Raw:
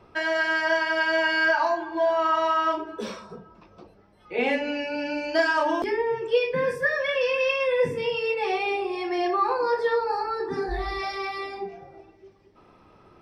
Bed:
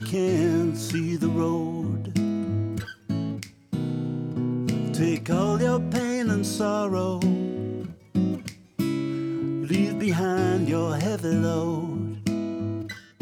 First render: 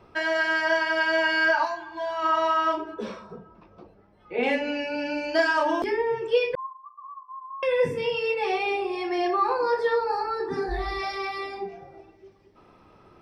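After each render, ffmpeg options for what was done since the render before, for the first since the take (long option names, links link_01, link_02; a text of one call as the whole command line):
ffmpeg -i in.wav -filter_complex "[0:a]asplit=3[link_01][link_02][link_03];[link_01]afade=type=out:start_time=1.64:duration=0.02[link_04];[link_02]equalizer=frequency=430:width=0.88:gain=-14.5,afade=type=in:start_time=1.64:duration=0.02,afade=type=out:start_time=2.22:duration=0.02[link_05];[link_03]afade=type=in:start_time=2.22:duration=0.02[link_06];[link_04][link_05][link_06]amix=inputs=3:normalize=0,asettb=1/sr,asplit=3[link_07][link_08][link_09];[link_07]atrim=end=2.944[link_10];[link_08]atrim=start=2.94:end=4.43,asetpts=PTS-STARTPTS,afade=type=in:duration=0.004:curve=qsin,afade=type=out:start_time=1.486:duration=0.004:curve=qsin,lowpass=frequency=2100:poles=1[link_11];[link_09]atrim=start=4.426[link_12];[link_10][link_11]acrossfade=duration=0.004:curve1=hsin:curve2=qsin[link_13];[link_13][link_12]acrossfade=duration=0.004:curve1=qsin:curve2=hsin,asettb=1/sr,asplit=3[link_14][link_15][link_16];[link_14]atrim=end=6.554[link_17];[link_15]atrim=start=6.55:end=7.63,asetpts=PTS-STARTPTS,afade=type=in:duration=0.004:curve=qsin,afade=type=out:start_time=1.076:duration=0.004:curve=qsin,asuperpass=centerf=1100:order=20:qfactor=6.9[link_18];[link_16]atrim=start=7.626[link_19];[link_17][link_18]acrossfade=duration=0.004:curve1=hsin:curve2=qsin[link_20];[link_20][link_19]acrossfade=duration=0.004:curve1=qsin:curve2=hsin" out.wav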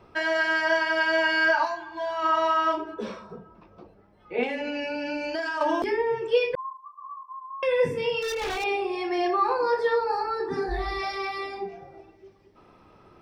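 ffmpeg -i in.wav -filter_complex "[0:a]asettb=1/sr,asplit=3[link_01][link_02][link_03];[link_01]atrim=end=4.434[link_04];[link_02]atrim=start=4.43:end=5.61,asetpts=PTS-STARTPTS,afade=type=in:duration=0.004:curve=qsin,afade=type=out:start_time=1.176:duration=0.004:curve=qsin,acompressor=threshold=-26dB:ratio=6:attack=3.2:release=140:knee=1:detection=peak[link_05];[link_03]atrim=start=5.606[link_06];[link_04][link_05]acrossfade=duration=0.004:curve1=hsin:curve2=qsin[link_07];[link_07][link_06]acrossfade=duration=0.004:curve1=qsin:curve2=hsin,asettb=1/sr,asplit=3[link_08][link_09][link_10];[link_08]atrim=end=6.574[link_11];[link_09]atrim=start=6.57:end=7.35,asetpts=PTS-STARTPTS,afade=type=in:duration=0.004:curve=qsin,afade=type=out:start_time=0.776:duration=0.004:curve=qsin,asplit=2[link_12][link_13];[link_13]adelay=27,volume=-6dB[link_14];[link_12][link_14]amix=inputs=2:normalize=0,atrim=end_sample=34398[link_15];[link_10]atrim=start=7.346[link_16];[link_11][link_15]acrossfade=duration=0.004:curve1=hsin:curve2=qsin[link_17];[link_17][link_16]acrossfade=duration=0.004:curve1=qsin:curve2=hsin,asettb=1/sr,asplit=3[link_18][link_19][link_20];[link_18]atrim=end=8.214[link_21];[link_19]atrim=start=8.21:end=8.64,asetpts=PTS-STARTPTS,afade=type=in:duration=0.004:curve=qsin,afade=type=out:start_time=0.426:duration=0.004:curve=qsin,aeval=exprs='0.0596*(abs(mod(val(0)/0.0596+3,4)-2)-1)':channel_layout=same[link_22];[link_20]atrim=start=8.636[link_23];[link_21][link_22]acrossfade=duration=0.004:curve1=hsin:curve2=qsin[link_24];[link_24][link_23]acrossfade=duration=0.004:curve1=qsin:curve2=hsin" out.wav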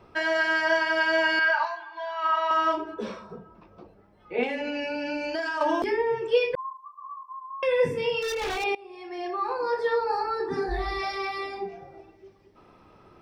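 ffmpeg -i in.wav -filter_complex "[0:a]asettb=1/sr,asplit=3[link_01][link_02][link_03];[link_01]atrim=end=1.394[link_04];[link_02]atrim=start=1.39:end=2.51,asetpts=PTS-STARTPTS,afade=type=in:duration=0.004:curve=qsin,afade=type=out:start_time=1.116:duration=0.004:curve=qsin,highpass=780,lowpass=3900[link_05];[link_03]atrim=start=2.506[link_06];[link_04][link_05]acrossfade=duration=0.004:curve1=hsin:curve2=qsin[link_07];[link_07][link_06]acrossfade=duration=0.004:curve1=qsin:curve2=hsin,asplit=2[link_08][link_09];[link_08]atrim=end=8.75,asetpts=PTS-STARTPTS,afade=type=out:start_time=8.746:duration=0.004:curve=hsin:silence=0.0841395[link_10];[link_09]atrim=start=8.75,asetpts=PTS-STARTPTS,afade=type=in:duration=1.4:silence=0.0841395[link_11];[link_10][link_11]concat=n=2:v=0:a=1" out.wav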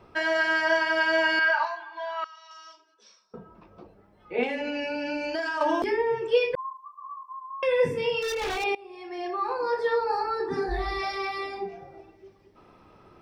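ffmpeg -i in.wav -filter_complex "[0:a]asettb=1/sr,asplit=3[link_01][link_02][link_03];[link_01]atrim=end=2.244[link_04];[link_02]atrim=start=2.24:end=3.34,asetpts=PTS-STARTPTS,afade=type=in:duration=0.004:curve=qsin,afade=type=out:start_time=1.096:duration=0.004:curve=qsin,bandpass=frequency=5600:width_type=q:width=3.8[link_05];[link_03]atrim=start=3.336[link_06];[link_04][link_05]acrossfade=duration=0.004:curve1=hsin:curve2=qsin[link_07];[link_07][link_06]acrossfade=duration=0.004:curve1=qsin:curve2=hsin" out.wav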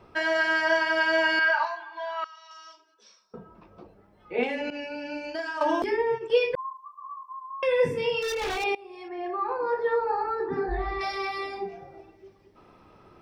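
ffmpeg -i in.wav -filter_complex "[0:a]asettb=1/sr,asplit=3[link_01][link_02][link_03];[link_01]atrim=end=4.704[link_04];[link_02]atrim=start=4.7:end=6.3,asetpts=PTS-STARTPTS,afade=type=in:duration=0.004:curve=qsin,afade=type=out:start_time=1.596:duration=0.004:curve=qsin,agate=range=-33dB:threshold=-27dB:ratio=3:release=100:detection=peak[link_05];[link_03]atrim=start=6.296[link_06];[link_04][link_05]acrossfade=duration=0.004:curve1=hsin:curve2=qsin[link_07];[link_07][link_06]acrossfade=duration=0.004:curve1=qsin:curve2=hsin,asettb=1/sr,asplit=3[link_08][link_09][link_10];[link_08]atrim=end=9.084[link_11];[link_09]atrim=start=9.08:end=11.01,asetpts=PTS-STARTPTS,afade=type=in:duration=0.004:curve=qsin,afade=type=out:start_time=1.926:duration=0.004:curve=qsin,lowpass=2100[link_12];[link_10]atrim=start=11.006[link_13];[link_11][link_12]acrossfade=duration=0.004:curve1=hsin:curve2=qsin[link_14];[link_14][link_13]acrossfade=duration=0.004:curve1=qsin:curve2=hsin" out.wav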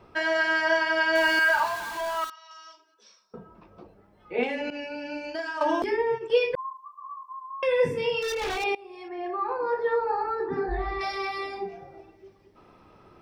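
ffmpeg -i in.wav -filter_complex "[0:a]asettb=1/sr,asplit=3[link_01][link_02][link_03];[link_01]atrim=end=1.154[link_04];[link_02]atrim=start=1.15:end=2.3,asetpts=PTS-STARTPTS,afade=type=in:duration=0.004:curve=qsin,afade=type=out:start_time=1.146:duration=0.004:curve=qsin,aeval=exprs='val(0)+0.5*0.0251*sgn(val(0))':channel_layout=same[link_05];[link_03]atrim=start=2.296[link_06];[link_04][link_05]acrossfade=duration=0.004:curve1=hsin:curve2=qsin[link_07];[link_07][link_06]acrossfade=duration=0.004:curve1=qsin:curve2=hsin" out.wav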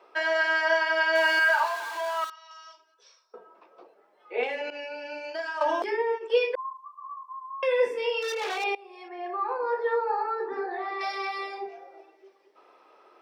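ffmpeg -i in.wav -af "highpass=frequency=410:width=0.5412,highpass=frequency=410:width=1.3066,highshelf=frequency=7600:gain=-5.5" out.wav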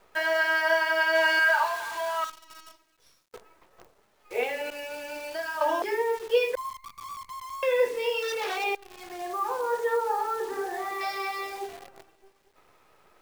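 ffmpeg -i in.wav -af "acrusher=bits=8:dc=4:mix=0:aa=0.000001" out.wav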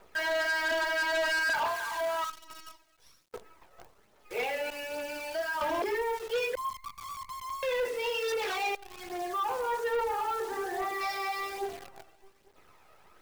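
ffmpeg -i in.wav -af "aphaser=in_gain=1:out_gain=1:delay=1.6:decay=0.39:speed=1.2:type=triangular,asoftclip=type=tanh:threshold=-26dB" out.wav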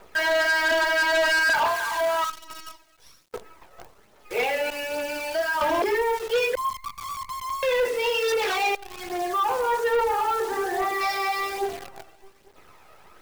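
ffmpeg -i in.wav -af "volume=7.5dB" out.wav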